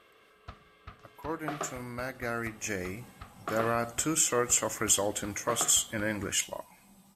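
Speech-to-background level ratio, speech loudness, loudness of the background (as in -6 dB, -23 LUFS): 15.5 dB, -29.5 LUFS, -45.0 LUFS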